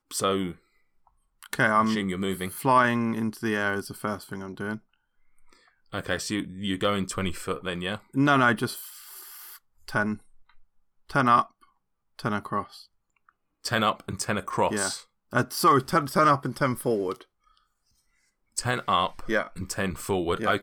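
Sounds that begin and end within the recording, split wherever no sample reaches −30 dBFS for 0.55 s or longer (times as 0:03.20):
0:01.43–0:04.76
0:05.94–0:08.81
0:09.88–0:10.14
0:11.10–0:11.42
0:12.19–0:12.62
0:13.65–0:17.13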